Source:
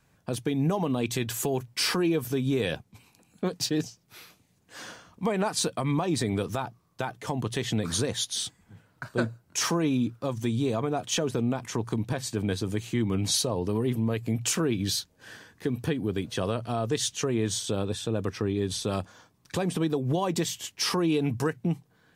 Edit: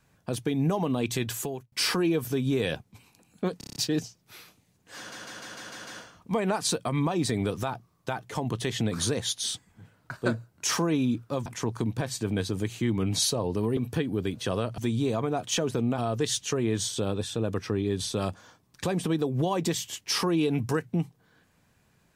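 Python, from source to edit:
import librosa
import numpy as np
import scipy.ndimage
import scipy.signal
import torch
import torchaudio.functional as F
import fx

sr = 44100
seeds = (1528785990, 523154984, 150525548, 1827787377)

y = fx.edit(x, sr, fx.fade_out_span(start_s=1.29, length_s=0.43),
    fx.stutter(start_s=3.58, slice_s=0.03, count=7),
    fx.stutter(start_s=4.79, slice_s=0.15, count=7),
    fx.move(start_s=10.38, length_s=1.2, to_s=16.69),
    fx.cut(start_s=13.89, length_s=1.79), tone=tone)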